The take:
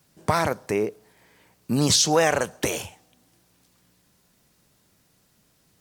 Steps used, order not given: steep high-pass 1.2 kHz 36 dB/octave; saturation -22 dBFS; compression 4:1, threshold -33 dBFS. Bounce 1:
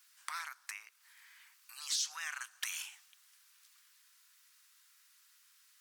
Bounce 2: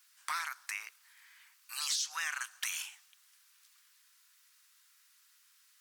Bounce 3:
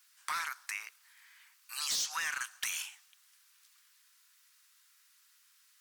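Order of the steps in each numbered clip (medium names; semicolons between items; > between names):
compression > steep high-pass > saturation; steep high-pass > compression > saturation; steep high-pass > saturation > compression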